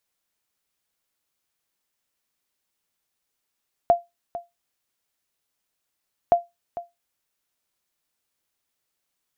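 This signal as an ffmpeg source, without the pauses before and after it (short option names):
-f lavfi -i "aevalsrc='0.398*(sin(2*PI*692*mod(t,2.42))*exp(-6.91*mod(t,2.42)/0.19)+0.168*sin(2*PI*692*max(mod(t,2.42)-0.45,0))*exp(-6.91*max(mod(t,2.42)-0.45,0)/0.19))':d=4.84:s=44100"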